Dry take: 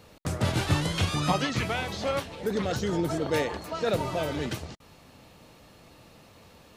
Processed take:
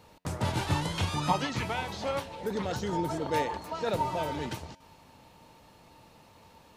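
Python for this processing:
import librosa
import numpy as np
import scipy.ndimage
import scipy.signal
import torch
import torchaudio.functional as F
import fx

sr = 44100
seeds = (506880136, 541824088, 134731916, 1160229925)

y = fx.peak_eq(x, sr, hz=910.0, db=11.5, octaves=0.2)
y = fx.comb_fb(y, sr, f0_hz=91.0, decay_s=2.0, harmonics='all', damping=0.0, mix_pct=40)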